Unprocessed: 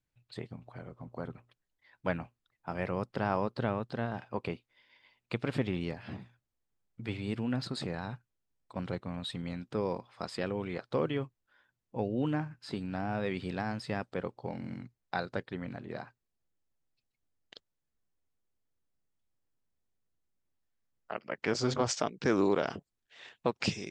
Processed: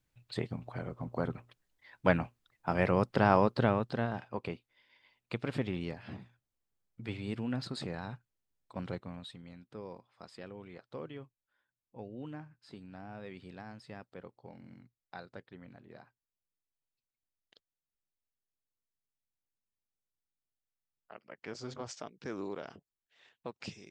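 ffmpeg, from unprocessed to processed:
ffmpeg -i in.wav -af "volume=6dB,afade=type=out:start_time=3.37:duration=1:silence=0.375837,afade=type=out:start_time=8.91:duration=0.48:silence=0.316228" out.wav

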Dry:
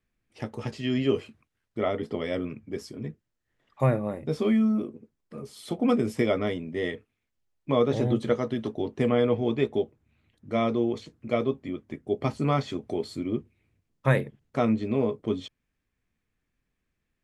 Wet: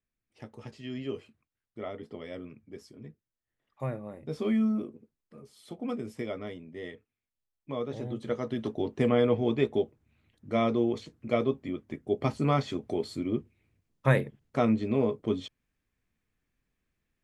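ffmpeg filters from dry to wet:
ffmpeg -i in.wav -af "volume=7dB,afade=type=in:start_time=4.11:duration=0.52:silence=0.398107,afade=type=out:start_time=4.63:duration=0.77:silence=0.398107,afade=type=in:start_time=8.15:duration=0.57:silence=0.316228" out.wav

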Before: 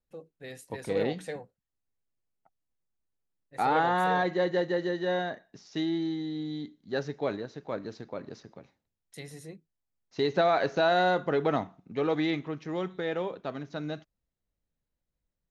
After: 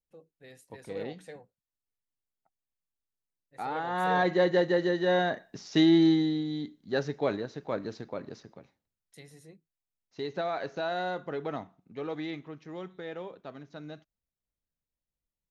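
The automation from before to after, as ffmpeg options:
ffmpeg -i in.wav -af "volume=10dB,afade=type=in:start_time=3.86:duration=0.44:silence=0.266073,afade=type=in:start_time=5.06:duration=1.03:silence=0.446684,afade=type=out:start_time=6.09:duration=0.35:silence=0.398107,afade=type=out:start_time=7.9:duration=1.36:silence=0.316228" out.wav

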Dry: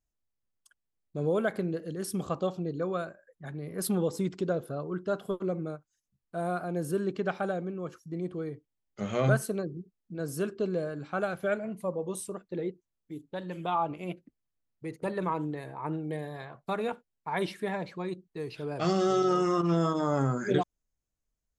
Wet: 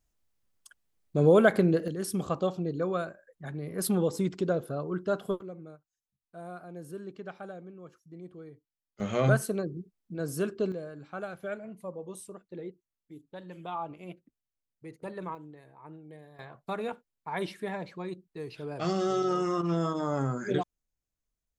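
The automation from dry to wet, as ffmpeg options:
ffmpeg -i in.wav -af "asetnsamples=nb_out_samples=441:pad=0,asendcmd='1.88 volume volume 1.5dB;5.41 volume volume -11dB;9 volume volume 1dB;10.72 volume volume -7dB;15.35 volume volume -14dB;16.39 volume volume -2.5dB',volume=8dB" out.wav

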